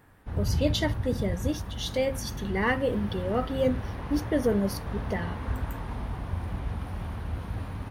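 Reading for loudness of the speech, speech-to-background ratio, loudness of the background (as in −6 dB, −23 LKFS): −30.0 LKFS, 4.5 dB, −34.5 LKFS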